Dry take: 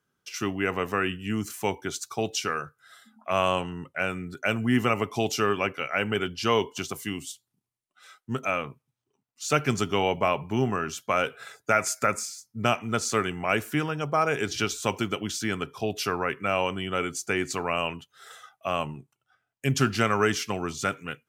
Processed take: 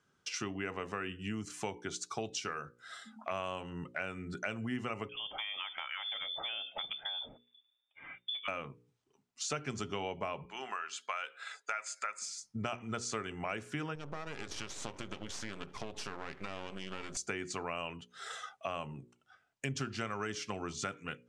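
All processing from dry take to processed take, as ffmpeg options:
-filter_complex "[0:a]asettb=1/sr,asplit=3[a][b][c];[a]atrim=end=5.094[d];[b]atrim=start=5.09:end=8.48,asetpts=PTS-STARTPTS,afade=t=in:d=0.004:c=qsin,afade=t=out:st=3.386:d=0.004:c=qsin,asubboost=boost=10.5:cutoff=140,acompressor=threshold=-33dB:ratio=4:attack=3.2:release=140:knee=1:detection=peak,lowpass=f=3.1k:t=q:w=0.5098,lowpass=f=3.1k:t=q:w=0.6013,lowpass=f=3.1k:t=q:w=0.9,lowpass=f=3.1k:t=q:w=2.563,afreqshift=-3600[e];[c]atrim=start=8.476[f];[d][e]acrossfade=d=0.004:c1=hsin:c2=qsin[g];[g][f]acrossfade=d=0.004:c1=qsin:c2=hsin,asettb=1/sr,asplit=3[h][i][j];[h]atrim=end=10.454[k];[i]atrim=start=10.45:end=12.22,asetpts=PTS-STARTPTS,afade=t=in:d=0.004:c=qsin,afade=t=out:st=1.766:d=0.004:c=qsin,highpass=1.1k,equalizer=f=14k:t=o:w=0.69:g=-14,bandreject=f=5.7k:w=6.5[l];[j]atrim=start=12.216[m];[k][l]acrossfade=d=0.004:c1=hsin:c2=qsin[n];[n][m]acrossfade=d=0.004:c1=qsin:c2=hsin,asettb=1/sr,asplit=3[o][p][q];[o]atrim=end=13.954[r];[p]atrim=start=13.95:end=17.17,asetpts=PTS-STARTPTS,afade=t=in:d=0.004:c=qsin,afade=t=out:st=3.216:d=0.004:c=qsin,acompressor=threshold=-35dB:ratio=2.5:attack=3.2:release=140:knee=1:detection=peak,aeval=exprs='max(val(0),0)':c=same[s];[q]atrim=start=17.166[t];[r][s]acrossfade=d=0.004:c1=hsin:c2=qsin[u];[u][t]acrossfade=d=0.004:c1=qsin:c2=hsin,lowpass=f=8.4k:w=0.5412,lowpass=f=8.4k:w=1.3066,bandreject=f=60:t=h:w=6,bandreject=f=120:t=h:w=6,bandreject=f=180:t=h:w=6,bandreject=f=240:t=h:w=6,bandreject=f=300:t=h:w=6,bandreject=f=360:t=h:w=6,bandreject=f=420:t=h:w=6,bandreject=f=480:t=h:w=6,bandreject=f=540:t=h:w=6,acompressor=threshold=-42dB:ratio=4,volume=4dB"

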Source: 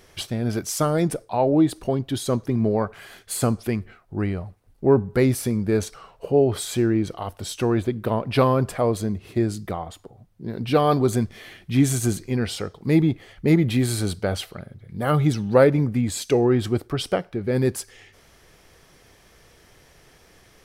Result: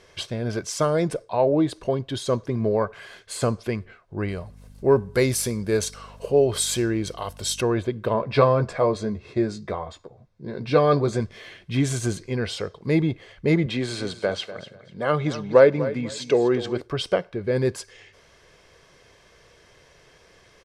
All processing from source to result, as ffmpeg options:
-filter_complex "[0:a]asettb=1/sr,asplit=3[a][b][c];[a]atrim=end=4.284[d];[b]atrim=start=4.28:end=7.61,asetpts=PTS-STARTPTS,afade=t=in:d=0.004:c=qsin,afade=t=out:st=3.326:d=0.004:c=qsin,aemphasis=mode=production:type=75fm,acompressor=mode=upward:threshold=-38dB:ratio=2.5:attack=3.2:release=140:knee=2.83:detection=peak,aeval=exprs='val(0)+0.00891*(sin(2*PI*50*n/s)+sin(2*PI*2*50*n/s)/2+sin(2*PI*3*50*n/s)/3+sin(2*PI*4*50*n/s)/4+sin(2*PI*5*50*n/s)/5)':c=same[e];[c]atrim=start=7.606[f];[d][e]acrossfade=d=0.004:c1=hsin:c2=qsin[g];[g][f]acrossfade=d=0.004:c1=qsin:c2=hsin,asettb=1/sr,asplit=3[h][i][j];[h]atrim=end=8.134[k];[i]atrim=start=8.13:end=11.2,asetpts=PTS-STARTPTS,afade=t=in:d=0.004:c=qsin,afade=t=out:st=3.066:d=0.004:c=qsin,lowpass=6.9k,bandreject=f=3k:w=5.7,asplit=2[l][m];[m]adelay=14,volume=-7dB[n];[l][n]amix=inputs=2:normalize=0,atrim=end_sample=135387[o];[j]atrim=start=11.196[p];[k][o]acrossfade=d=0.004:c1=hsin:c2=qsin[q];[q][p]acrossfade=d=0.004:c1=qsin:c2=hsin,asettb=1/sr,asplit=3[r][s][t];[r]atrim=end=13.664[u];[s]atrim=start=13.66:end=16.81,asetpts=PTS-STARTPTS,afade=t=in:d=0.004:c=qsin,afade=t=out:st=3.146:d=0.004:c=qsin,highpass=170,lowpass=7k,aecho=1:1:246|492|738:0.2|0.0479|0.0115,atrim=end_sample=138915[v];[t]atrim=start=16.806[w];[u][v]acrossfade=d=0.004:c1=hsin:c2=qsin[x];[x][w]acrossfade=d=0.004:c1=qsin:c2=hsin,lowpass=6.6k,lowshelf=f=100:g=-9,aecho=1:1:1.9:0.38"

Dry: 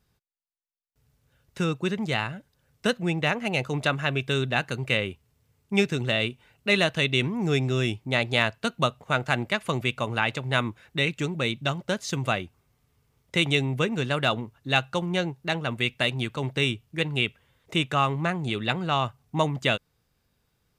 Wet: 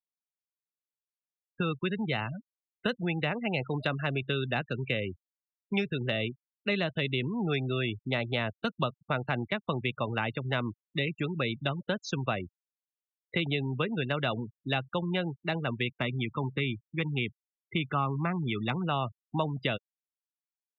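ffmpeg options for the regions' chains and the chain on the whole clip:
-filter_complex "[0:a]asettb=1/sr,asplit=3[a][b][c];[a]atrim=end=15.894[d];[b]atrim=start=15.89:end=18.87,asetpts=PTS-STARTPTS,afade=t=in:d=0.004:c=qsin,afade=t=out:st=2.976:d=0.004:c=qsin,highpass=f=54:p=1,equalizer=f=5.8k:w=1:g=-10,aecho=1:1:0.9:0.41,atrim=end_sample=131418[e];[c]atrim=start=18.866[f];[d][e]acrossfade=d=0.004:c1=hsin:c2=qsin[g];[g][f]acrossfade=d=0.004:c1=qsin:c2=hsin,afftfilt=real='re*gte(hypot(re,im),0.0316)':imag='im*gte(hypot(re,im),0.0316)':win_size=1024:overlap=0.75,lowpass=4.6k,acrossover=split=170|650[h][i][j];[h]acompressor=threshold=-37dB:ratio=4[k];[i]acompressor=threshold=-32dB:ratio=4[l];[j]acompressor=threshold=-31dB:ratio=4[m];[k][l][m]amix=inputs=3:normalize=0"

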